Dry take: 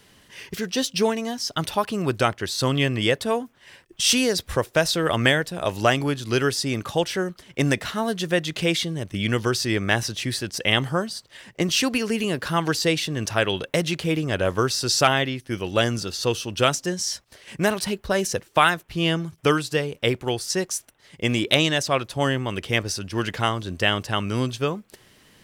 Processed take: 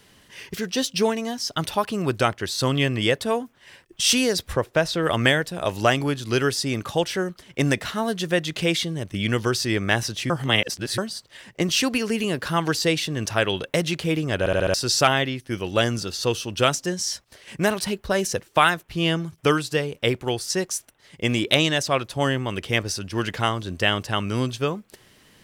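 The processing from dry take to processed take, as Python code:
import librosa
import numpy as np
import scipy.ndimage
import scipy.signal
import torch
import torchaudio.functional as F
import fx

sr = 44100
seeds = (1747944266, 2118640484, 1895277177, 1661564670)

y = fx.high_shelf(x, sr, hz=fx.line((4.52, 3300.0), (5.02, 5800.0)), db=-11.0, at=(4.52, 5.02), fade=0.02)
y = fx.edit(y, sr, fx.reverse_span(start_s=10.3, length_s=0.68),
    fx.stutter_over(start_s=14.39, slice_s=0.07, count=5), tone=tone)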